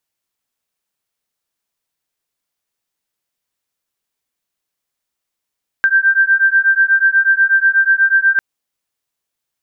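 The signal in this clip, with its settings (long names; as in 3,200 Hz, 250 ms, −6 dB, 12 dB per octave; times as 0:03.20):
two tones that beat 1,570 Hz, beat 8.2 Hz, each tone −12.5 dBFS 2.55 s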